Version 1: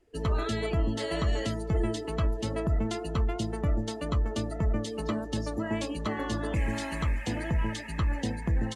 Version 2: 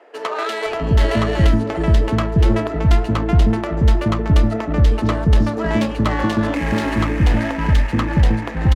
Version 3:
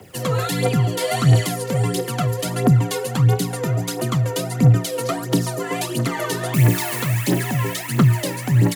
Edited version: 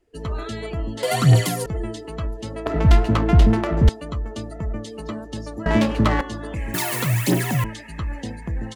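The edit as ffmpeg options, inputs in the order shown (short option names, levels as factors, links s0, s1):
-filter_complex "[2:a]asplit=2[s0][s1];[1:a]asplit=2[s2][s3];[0:a]asplit=5[s4][s5][s6][s7][s8];[s4]atrim=end=1.032[s9];[s0]atrim=start=1.028:end=1.662[s10];[s5]atrim=start=1.658:end=2.662[s11];[s2]atrim=start=2.658:end=3.892[s12];[s6]atrim=start=3.888:end=5.662[s13];[s3]atrim=start=5.658:end=6.212[s14];[s7]atrim=start=6.208:end=6.742[s15];[s1]atrim=start=6.738:end=7.642[s16];[s8]atrim=start=7.638[s17];[s9][s10]acrossfade=d=0.004:c1=hsin:c2=hsin[s18];[s18][s11]acrossfade=d=0.004:c1=hsin:c2=hsin[s19];[s19][s12]acrossfade=d=0.004:c1=hsin:c2=hsin[s20];[s20][s13]acrossfade=d=0.004:c1=hsin:c2=hsin[s21];[s21][s14]acrossfade=d=0.004:c1=hsin:c2=hsin[s22];[s22][s15]acrossfade=d=0.004:c1=hsin:c2=hsin[s23];[s23][s16]acrossfade=d=0.004:c1=hsin:c2=hsin[s24];[s24][s17]acrossfade=d=0.004:c1=hsin:c2=hsin"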